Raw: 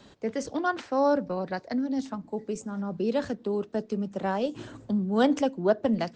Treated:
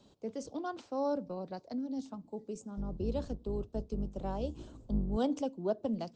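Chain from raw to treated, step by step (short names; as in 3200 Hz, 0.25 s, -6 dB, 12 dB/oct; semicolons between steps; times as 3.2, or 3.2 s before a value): 2.77–5.17 octaver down 2 oct, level +2 dB; bell 1800 Hz -14.5 dB 0.87 oct; gain -8.5 dB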